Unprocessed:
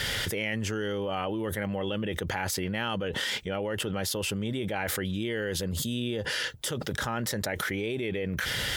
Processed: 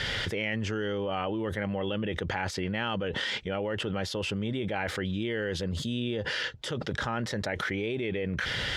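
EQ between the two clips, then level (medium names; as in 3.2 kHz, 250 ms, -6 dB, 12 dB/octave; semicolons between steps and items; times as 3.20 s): low-pass 4.5 kHz 12 dB/octave; 0.0 dB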